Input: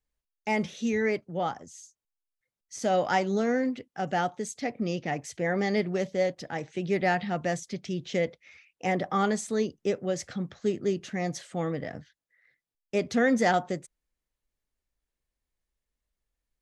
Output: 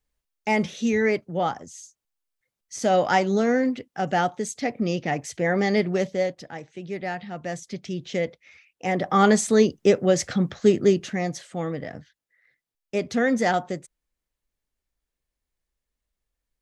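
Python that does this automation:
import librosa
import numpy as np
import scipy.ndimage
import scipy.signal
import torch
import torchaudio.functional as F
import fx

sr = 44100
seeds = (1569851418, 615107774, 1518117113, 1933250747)

y = fx.gain(x, sr, db=fx.line((6.02, 5.0), (6.68, -5.0), (7.32, -5.0), (7.74, 1.5), (8.86, 1.5), (9.32, 10.0), (10.84, 10.0), (11.37, 1.5)))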